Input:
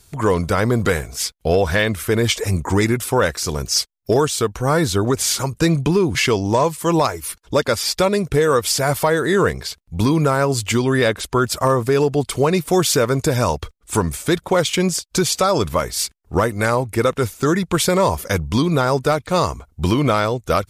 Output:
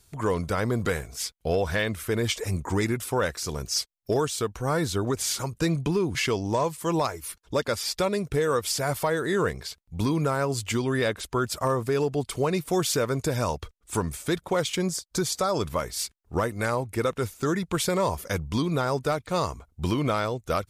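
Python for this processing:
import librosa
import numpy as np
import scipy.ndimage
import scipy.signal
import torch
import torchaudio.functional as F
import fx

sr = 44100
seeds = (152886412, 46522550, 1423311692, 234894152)

y = fx.peak_eq(x, sr, hz=2700.0, db=-8.0, octaves=0.51, at=(14.75, 15.54))
y = y * librosa.db_to_amplitude(-8.5)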